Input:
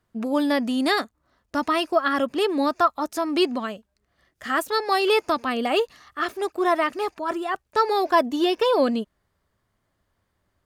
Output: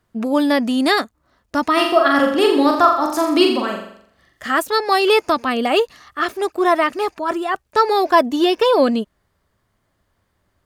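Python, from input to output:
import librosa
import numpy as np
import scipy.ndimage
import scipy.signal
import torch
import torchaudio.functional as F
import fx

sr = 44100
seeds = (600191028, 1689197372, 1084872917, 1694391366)

y = fx.room_flutter(x, sr, wall_m=7.3, rt60_s=0.64, at=(1.76, 4.46), fade=0.02)
y = y * librosa.db_to_amplitude(5.5)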